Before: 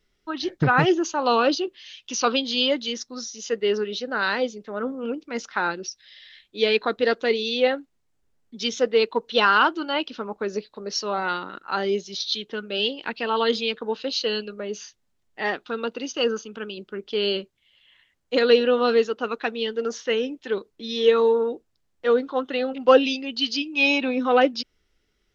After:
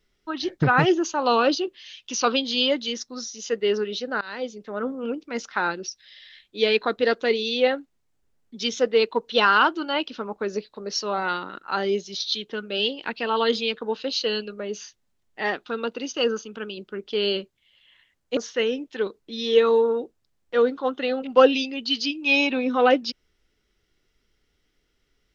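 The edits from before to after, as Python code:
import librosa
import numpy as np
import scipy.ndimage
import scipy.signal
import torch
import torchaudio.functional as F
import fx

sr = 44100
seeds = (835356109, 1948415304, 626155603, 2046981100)

y = fx.edit(x, sr, fx.fade_in_from(start_s=4.21, length_s=0.44, floor_db=-23.5),
    fx.cut(start_s=18.37, length_s=1.51), tone=tone)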